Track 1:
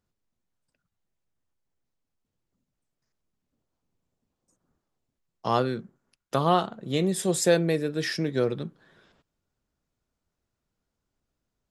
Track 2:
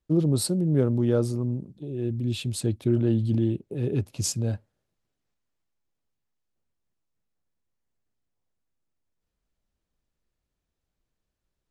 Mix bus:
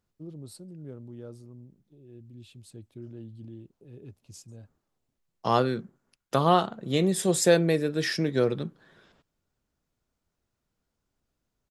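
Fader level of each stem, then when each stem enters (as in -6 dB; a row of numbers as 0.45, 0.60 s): +1.0, -20.0 dB; 0.00, 0.10 s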